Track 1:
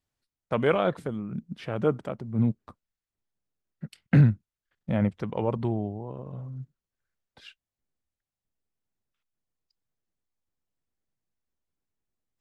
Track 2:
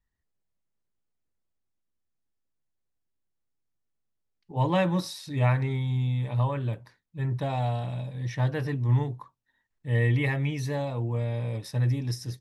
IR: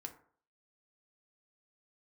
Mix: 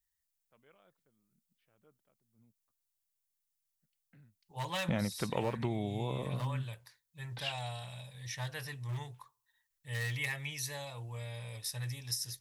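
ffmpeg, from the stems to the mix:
-filter_complex "[0:a]lowpass=3300,volume=1.5dB[link_01];[1:a]equalizer=frequency=280:width=1.2:gain=-14.5,volume=22dB,asoftclip=hard,volume=-22dB,volume=-12.5dB,asplit=3[link_02][link_03][link_04];[link_03]volume=-12dB[link_05];[link_04]apad=whole_len=547079[link_06];[link_01][link_06]sidechaingate=range=-46dB:threshold=-57dB:ratio=16:detection=peak[link_07];[2:a]atrim=start_sample=2205[link_08];[link_05][link_08]afir=irnorm=-1:irlink=0[link_09];[link_07][link_02][link_09]amix=inputs=3:normalize=0,crystalizer=i=7.5:c=0,acompressor=threshold=-29dB:ratio=10"

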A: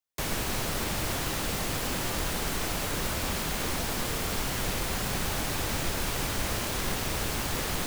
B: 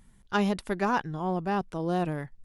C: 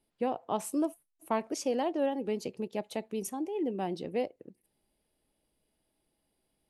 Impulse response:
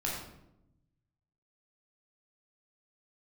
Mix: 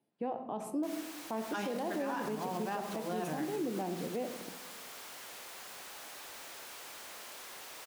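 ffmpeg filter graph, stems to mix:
-filter_complex "[0:a]highpass=550,asoftclip=type=tanh:threshold=-34.5dB,adelay=650,volume=-10dB[link_01];[1:a]highpass=frequency=500:poles=1,adelay=1200,volume=-3.5dB,asplit=2[link_02][link_03];[link_03]volume=-8.5dB[link_04];[2:a]highpass=frequency=130:width=0.5412,highpass=frequency=130:width=1.3066,highshelf=frequency=2200:gain=-11.5,volume=-1dB,asplit=3[link_05][link_06][link_07];[link_06]volume=-11.5dB[link_08];[link_07]apad=whole_len=160536[link_09];[link_02][link_09]sidechaincompress=threshold=-33dB:ratio=8:attack=16:release=390[link_10];[3:a]atrim=start_sample=2205[link_11];[link_04][link_08]amix=inputs=2:normalize=0[link_12];[link_12][link_11]afir=irnorm=-1:irlink=0[link_13];[link_01][link_10][link_05][link_13]amix=inputs=4:normalize=0,alimiter=level_in=3.5dB:limit=-24dB:level=0:latency=1:release=93,volume=-3.5dB"

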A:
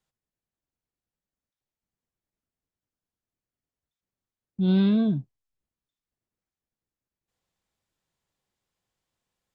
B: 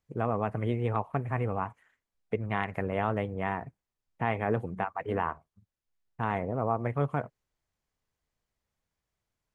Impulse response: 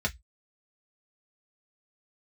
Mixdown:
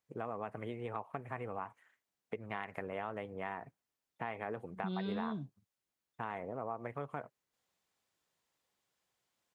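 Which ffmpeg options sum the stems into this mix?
-filter_complex "[0:a]acompressor=threshold=-29dB:ratio=6,adelay=250,volume=0.5dB[link_01];[1:a]acompressor=threshold=-33dB:ratio=2,volume=-2dB[link_02];[link_01][link_02]amix=inputs=2:normalize=0,highpass=frequency=360:poles=1,acompressor=threshold=-36dB:ratio=2"

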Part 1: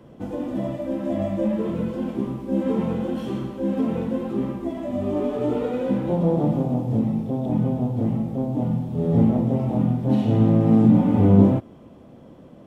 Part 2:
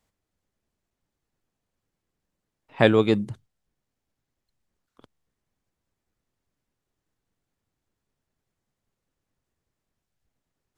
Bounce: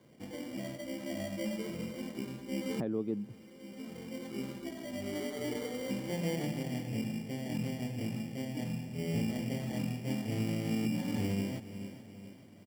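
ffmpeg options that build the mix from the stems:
ffmpeg -i stem1.wav -i stem2.wav -filter_complex "[0:a]highpass=81,acrusher=samples=17:mix=1:aa=0.000001,volume=-13.5dB,asplit=2[link_01][link_02];[link_02]volume=-17dB[link_03];[1:a]bandpass=frequency=250:width_type=q:width=1.3:csg=0,volume=-4dB,asplit=2[link_04][link_05];[link_05]apad=whole_len=558307[link_06];[link_01][link_06]sidechaincompress=threshold=-42dB:ratio=8:attack=10:release=865[link_07];[link_03]aecho=0:1:427|854|1281|1708|2135|2562|2989:1|0.47|0.221|0.104|0.0488|0.0229|0.0108[link_08];[link_07][link_04][link_08]amix=inputs=3:normalize=0,alimiter=level_in=0.5dB:limit=-24dB:level=0:latency=1:release=332,volume=-0.5dB" out.wav

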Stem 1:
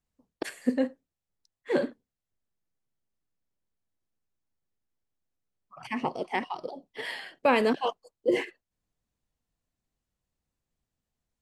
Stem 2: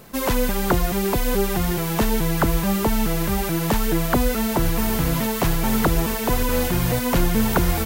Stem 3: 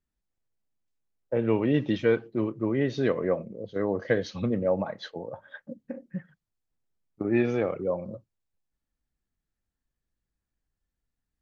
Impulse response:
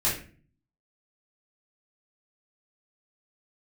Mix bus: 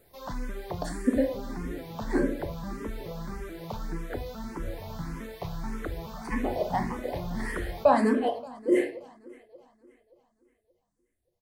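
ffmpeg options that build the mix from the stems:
-filter_complex "[0:a]equalizer=frequency=250:width_type=o:width=0.67:gain=10,equalizer=frequency=630:width_type=o:width=0.67:gain=7,equalizer=frequency=10000:width_type=o:width=0.67:gain=9,adelay=400,volume=-3.5dB,asplit=3[link_01][link_02][link_03];[link_02]volume=-11.5dB[link_04];[link_03]volume=-16.5dB[link_05];[1:a]acrossover=split=5200[link_06][link_07];[link_07]acompressor=threshold=-43dB:ratio=4:attack=1:release=60[link_08];[link_06][link_08]amix=inputs=2:normalize=0,volume=-13dB,asplit=3[link_09][link_10][link_11];[link_10]volume=-22dB[link_12];[link_11]volume=-22.5dB[link_13];[2:a]volume=-17.5dB[link_14];[3:a]atrim=start_sample=2205[link_15];[link_04][link_12]amix=inputs=2:normalize=0[link_16];[link_16][link_15]afir=irnorm=-1:irlink=0[link_17];[link_05][link_13]amix=inputs=2:normalize=0,aecho=0:1:288|576|864|1152|1440|1728|2016|2304|2592:1|0.58|0.336|0.195|0.113|0.0656|0.0381|0.0221|0.0128[link_18];[link_01][link_09][link_14][link_17][link_18]amix=inputs=5:normalize=0,equalizer=frequency=2800:width=4:gain=-9,asplit=2[link_19][link_20];[link_20]afreqshift=1.7[link_21];[link_19][link_21]amix=inputs=2:normalize=1"

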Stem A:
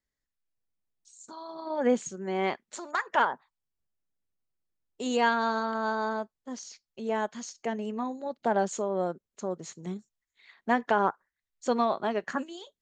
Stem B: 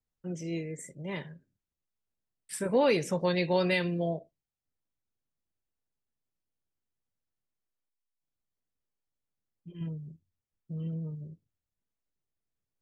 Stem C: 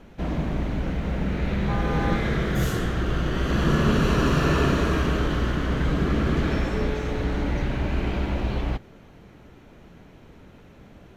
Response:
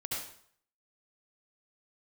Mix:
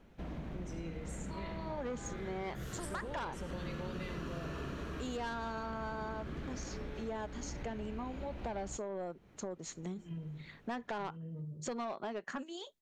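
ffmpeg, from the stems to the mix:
-filter_complex "[0:a]asoftclip=type=tanh:threshold=-23.5dB,volume=0.5dB[link_01];[1:a]acompressor=threshold=-29dB:ratio=6,adelay=300,volume=-6.5dB,asplit=2[link_02][link_03];[link_03]volume=-8.5dB[link_04];[2:a]volume=-13dB[link_05];[3:a]atrim=start_sample=2205[link_06];[link_04][link_06]afir=irnorm=-1:irlink=0[link_07];[link_01][link_02][link_05][link_07]amix=inputs=4:normalize=0,acompressor=threshold=-39dB:ratio=4"

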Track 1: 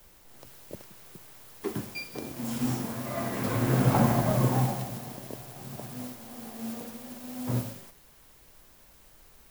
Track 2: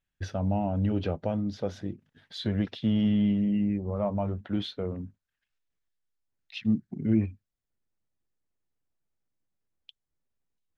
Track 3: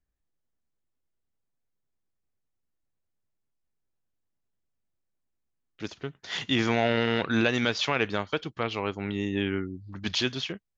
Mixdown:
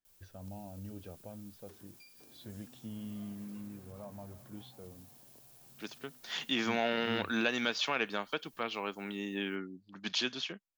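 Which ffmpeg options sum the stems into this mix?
ffmpeg -i stem1.wav -i stem2.wav -i stem3.wav -filter_complex "[0:a]highshelf=frequency=2800:gain=11.5,acompressor=threshold=-35dB:ratio=6,asoftclip=type=tanh:threshold=-34dB,adelay=50,volume=-17dB[link_01];[1:a]volume=-18.5dB[link_02];[2:a]highpass=frequency=190:width=0.5412,highpass=frequency=190:width=1.3066,equalizer=frequency=360:width=0.92:gain=-4.5,volume=-4.5dB,asplit=2[link_03][link_04];[link_04]apad=whole_len=421486[link_05];[link_01][link_05]sidechaincompress=threshold=-39dB:ratio=8:attack=16:release=154[link_06];[link_06][link_02][link_03]amix=inputs=3:normalize=0,bandreject=frequency=2000:width=15" out.wav

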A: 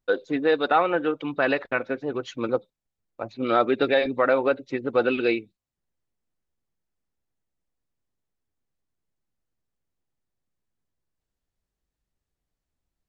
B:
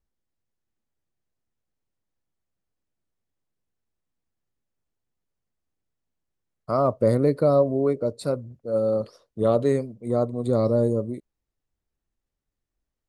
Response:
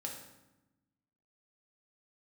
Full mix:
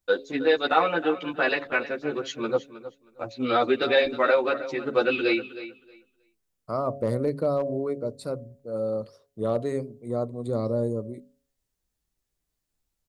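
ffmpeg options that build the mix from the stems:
-filter_complex "[0:a]highshelf=frequency=3700:gain=11,asplit=2[link_01][link_02];[link_02]adelay=11.7,afreqshift=-0.37[link_03];[link_01][link_03]amix=inputs=2:normalize=1,volume=1.5dB,asplit=2[link_04][link_05];[link_05]volume=-14.5dB[link_06];[1:a]bandreject=frequency=50:width_type=h:width=6,bandreject=frequency=100:width_type=h:width=6,bandreject=frequency=150:width_type=h:width=6,bandreject=frequency=200:width_type=h:width=6,bandreject=frequency=250:width_type=h:width=6,asoftclip=type=hard:threshold=-11.5dB,volume=-5dB[link_07];[link_06]aecho=0:1:315|630|945:1|0.17|0.0289[link_08];[link_04][link_07][link_08]amix=inputs=3:normalize=0,bandreject=frequency=138.9:width_type=h:width=4,bandreject=frequency=277.8:width_type=h:width=4,bandreject=frequency=416.7:width_type=h:width=4,bandreject=frequency=555.6:width_type=h:width=4,bandreject=frequency=694.5:width_type=h:width=4"

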